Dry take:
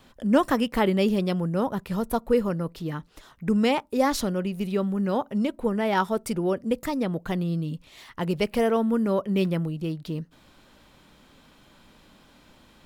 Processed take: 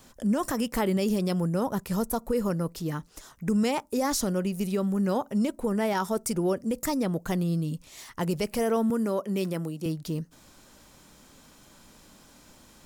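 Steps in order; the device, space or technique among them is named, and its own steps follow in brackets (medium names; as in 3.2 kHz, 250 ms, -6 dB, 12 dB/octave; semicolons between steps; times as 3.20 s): over-bright horn tweeter (resonant high shelf 4.7 kHz +8.5 dB, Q 1.5; peak limiter -18 dBFS, peak gain reduction 11 dB); 8.90–9.86 s: high-pass 210 Hz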